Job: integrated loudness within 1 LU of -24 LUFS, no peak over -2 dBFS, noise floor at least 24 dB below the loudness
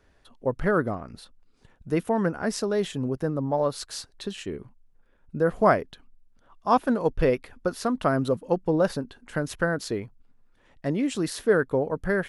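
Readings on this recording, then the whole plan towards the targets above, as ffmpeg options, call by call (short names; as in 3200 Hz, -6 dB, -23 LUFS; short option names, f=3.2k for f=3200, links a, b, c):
loudness -26.5 LUFS; peak -6.5 dBFS; loudness target -24.0 LUFS
-> -af "volume=2.5dB"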